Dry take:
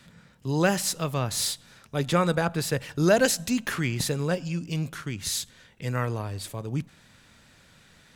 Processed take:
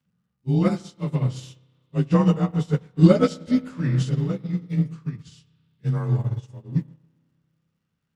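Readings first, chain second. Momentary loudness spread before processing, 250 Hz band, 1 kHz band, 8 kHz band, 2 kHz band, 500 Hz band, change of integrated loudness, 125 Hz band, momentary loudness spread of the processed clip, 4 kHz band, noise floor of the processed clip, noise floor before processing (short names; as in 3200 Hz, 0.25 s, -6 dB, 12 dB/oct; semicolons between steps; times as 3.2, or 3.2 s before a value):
11 LU, +7.0 dB, -3.0 dB, under -15 dB, -10.5 dB, 0.0 dB, +4.0 dB, +7.5 dB, 14 LU, -10.0 dB, -77 dBFS, -57 dBFS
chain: inharmonic rescaling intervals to 90%; bell 120 Hz +13 dB 2.9 oct; on a send: darkening echo 0.125 s, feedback 62%, low-pass 1600 Hz, level -14 dB; on the sum: crackle 170/s -45 dBFS; spring tank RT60 2.8 s, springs 31 ms, chirp 50 ms, DRR 8.5 dB; upward expander 2.5:1, over -31 dBFS; gain +3 dB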